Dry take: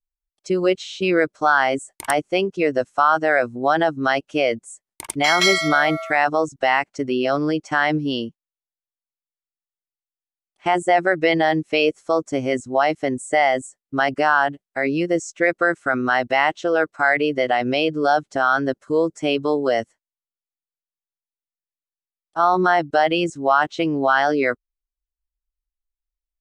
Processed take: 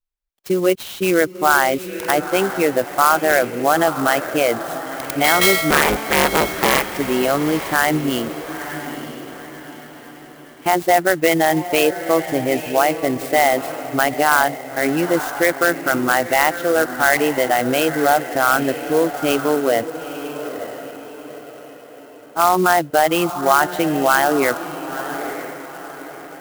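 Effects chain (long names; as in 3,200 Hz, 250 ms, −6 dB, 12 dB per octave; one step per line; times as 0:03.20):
0:05.70–0:06.88: sub-harmonics by changed cycles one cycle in 3, inverted
feedback delay with all-pass diffusion 926 ms, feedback 42%, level −10.5 dB
converter with an unsteady clock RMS 0.038 ms
level +2 dB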